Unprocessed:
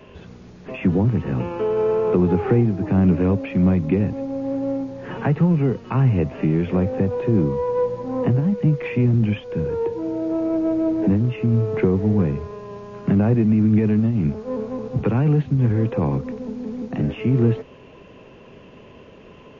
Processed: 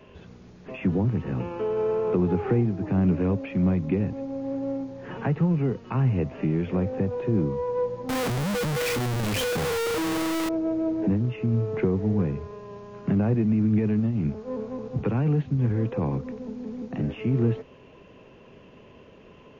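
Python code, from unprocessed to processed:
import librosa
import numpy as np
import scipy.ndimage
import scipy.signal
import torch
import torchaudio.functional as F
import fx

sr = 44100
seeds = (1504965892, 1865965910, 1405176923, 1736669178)

y = fx.clip_1bit(x, sr, at=(8.09, 10.49))
y = y * librosa.db_to_amplitude(-5.5)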